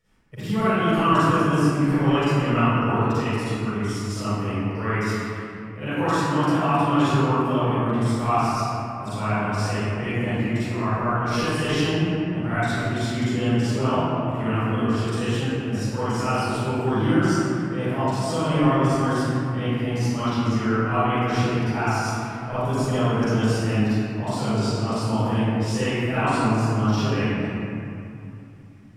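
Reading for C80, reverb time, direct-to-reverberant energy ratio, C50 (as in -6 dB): -6.5 dB, 2.7 s, -15.0 dB, -11.5 dB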